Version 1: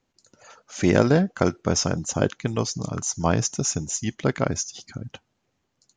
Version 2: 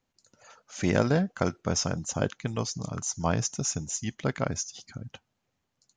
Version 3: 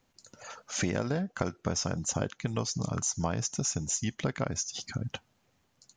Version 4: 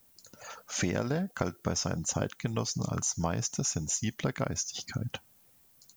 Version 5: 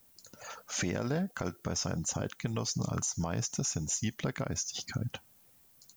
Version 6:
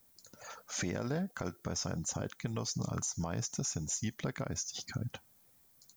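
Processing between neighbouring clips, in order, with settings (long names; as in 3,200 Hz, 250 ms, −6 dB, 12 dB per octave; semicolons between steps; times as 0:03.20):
parametric band 350 Hz −4.5 dB 0.74 octaves; level −4.5 dB
downward compressor 6 to 1, threshold −36 dBFS, peak gain reduction 17 dB; level +8 dB
background noise violet −63 dBFS
brickwall limiter −22.5 dBFS, peak gain reduction 7.5 dB
parametric band 2,800 Hz −5.5 dB 0.22 octaves; level −3 dB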